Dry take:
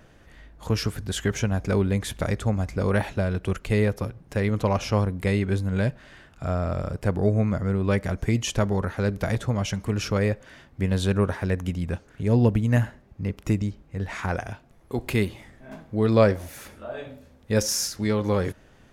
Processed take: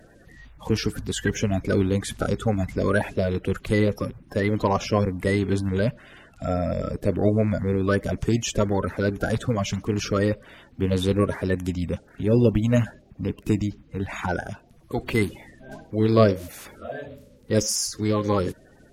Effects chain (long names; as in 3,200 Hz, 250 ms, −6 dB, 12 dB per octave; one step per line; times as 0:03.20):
spectral magnitudes quantised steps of 30 dB
level +1.5 dB